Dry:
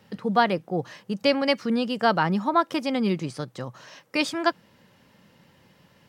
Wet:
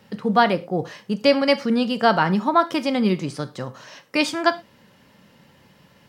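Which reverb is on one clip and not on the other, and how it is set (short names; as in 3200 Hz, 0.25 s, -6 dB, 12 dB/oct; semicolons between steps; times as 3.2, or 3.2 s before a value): non-linear reverb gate 0.14 s falling, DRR 11 dB; gain +3.5 dB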